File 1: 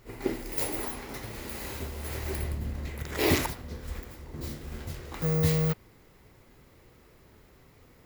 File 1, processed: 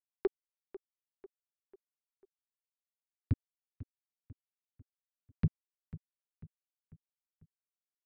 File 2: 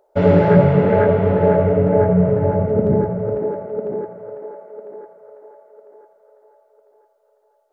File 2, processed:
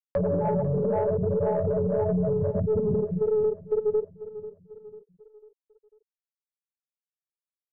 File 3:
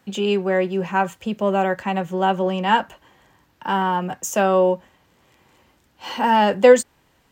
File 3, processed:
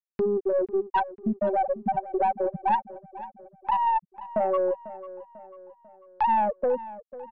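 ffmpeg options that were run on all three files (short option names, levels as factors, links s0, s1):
-filter_complex "[0:a]afftfilt=real='re*gte(hypot(re,im),0.708)':imag='im*gte(hypot(re,im),0.708)':win_size=1024:overlap=0.75,equalizer=f=2300:w=0.58:g=13,acompressor=threshold=0.0562:ratio=4,acrossover=split=850[s0][s1];[s0]alimiter=limit=0.0708:level=0:latency=1:release=15[s2];[s2][s1]amix=inputs=2:normalize=0,acompressor=mode=upward:threshold=0.0562:ratio=2.5,aeval=exprs='(tanh(8.91*val(0)+0.2)-tanh(0.2))/8.91':c=same,asplit=2[s3][s4];[s4]adelay=495,lowpass=f=3200:p=1,volume=0.158,asplit=2[s5][s6];[s6]adelay=495,lowpass=f=3200:p=1,volume=0.49,asplit=2[s7][s8];[s8]adelay=495,lowpass=f=3200:p=1,volume=0.49,asplit=2[s9][s10];[s10]adelay=495,lowpass=f=3200:p=1,volume=0.49[s11];[s3][s5][s7][s9][s11]amix=inputs=5:normalize=0,aresample=11025,aresample=44100,volume=1.58"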